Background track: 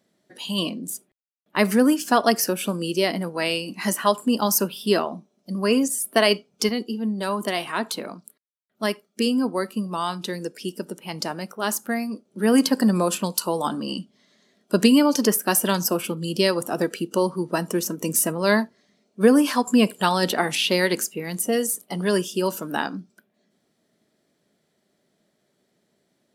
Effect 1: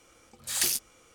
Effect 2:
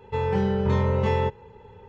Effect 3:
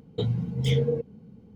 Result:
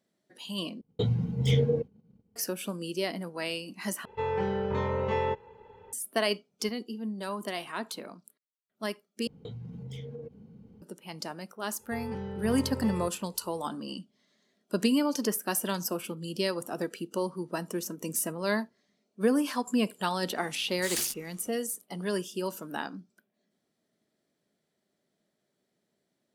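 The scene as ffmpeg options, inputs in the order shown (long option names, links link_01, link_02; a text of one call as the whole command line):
ffmpeg -i bed.wav -i cue0.wav -i cue1.wav -i cue2.wav -filter_complex "[3:a]asplit=2[link_01][link_02];[2:a]asplit=2[link_03][link_04];[0:a]volume=-9.5dB[link_05];[link_01]agate=range=-33dB:threshold=-40dB:ratio=3:release=100:detection=peak[link_06];[link_03]bass=frequency=250:gain=-9,treble=frequency=4000:gain=-6[link_07];[link_02]acompressor=threshold=-36dB:ratio=8:attack=5.5:release=103:knee=1:detection=peak[link_08];[1:a]asoftclip=type=tanh:threshold=-20.5dB[link_09];[link_05]asplit=4[link_10][link_11][link_12][link_13];[link_10]atrim=end=0.814[link_14];[link_06]atrim=end=1.55,asetpts=PTS-STARTPTS,volume=-0.5dB[link_15];[link_11]atrim=start=2.356:end=4.054[link_16];[link_07]atrim=end=1.88,asetpts=PTS-STARTPTS,volume=-3dB[link_17];[link_12]atrim=start=5.926:end=9.274[link_18];[link_08]atrim=end=1.55,asetpts=PTS-STARTPTS,volume=-3dB[link_19];[link_13]atrim=start=10.816[link_20];[link_04]atrim=end=1.88,asetpts=PTS-STARTPTS,volume=-14dB,afade=type=in:duration=0.004:curve=hsin,afade=type=out:start_time=1.876:duration=0.004:curve=hsin,adelay=11790[link_21];[link_09]atrim=end=1.14,asetpts=PTS-STARTPTS,volume=-3dB,afade=type=in:duration=0.004:curve=hsin,afade=type=out:start_time=1.136:duration=0.004:curve=hsin,adelay=20350[link_22];[link_14][link_15]acrossfade=duration=0.004:curve1=hsin:curve2=hsin[link_23];[link_23][link_16]acrossfade=duration=0.004:curve1=hsin:curve2=hsin[link_24];[link_24][link_17]acrossfade=duration=0.004:curve1=hsin:curve2=hsin[link_25];[link_25][link_18]acrossfade=duration=0.004:curve1=hsin:curve2=hsin[link_26];[link_26][link_19]acrossfade=duration=0.004:curve1=hsin:curve2=hsin[link_27];[link_27][link_20]acrossfade=duration=0.004:curve1=hsin:curve2=hsin[link_28];[link_28][link_21][link_22]amix=inputs=3:normalize=0" out.wav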